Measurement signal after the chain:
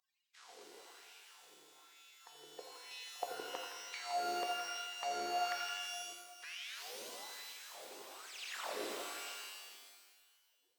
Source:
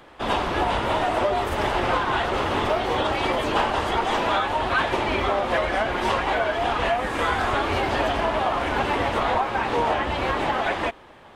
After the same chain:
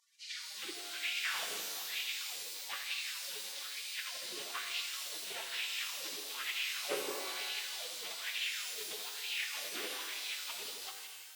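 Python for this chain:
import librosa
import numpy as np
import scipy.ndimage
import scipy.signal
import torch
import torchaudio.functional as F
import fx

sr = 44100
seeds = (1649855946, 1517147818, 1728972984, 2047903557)

p1 = fx.delta_mod(x, sr, bps=64000, step_db=-38.5)
p2 = scipy.signal.sosfilt(scipy.signal.butter(2, 59.0, 'highpass', fs=sr, output='sos'), p1)
p3 = fx.spec_gate(p2, sr, threshold_db=-25, keep='weak')
p4 = fx.peak_eq(p3, sr, hz=1700.0, db=-12.0, octaves=2.4)
p5 = fx.rider(p4, sr, range_db=4, speed_s=2.0)
p6 = p4 + (p5 * librosa.db_to_amplitude(-1.0))
p7 = fx.air_absorb(p6, sr, metres=150.0)
p8 = p7 + fx.echo_heads(p7, sr, ms=83, heads='first and second', feedback_pct=58, wet_db=-11.5, dry=0)
p9 = fx.filter_lfo_highpass(p8, sr, shape='sine', hz=1.1, low_hz=370.0, high_hz=2600.0, q=3.8)
p10 = fx.rev_shimmer(p9, sr, seeds[0], rt60_s=1.5, semitones=12, shimmer_db=-2, drr_db=4.5)
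y = p10 * librosa.db_to_amplitude(1.0)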